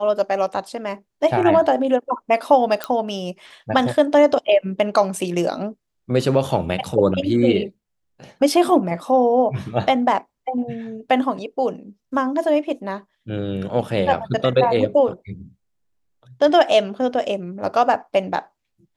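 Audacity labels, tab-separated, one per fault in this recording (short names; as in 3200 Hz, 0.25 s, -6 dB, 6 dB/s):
2.840000	2.840000	pop -9 dBFS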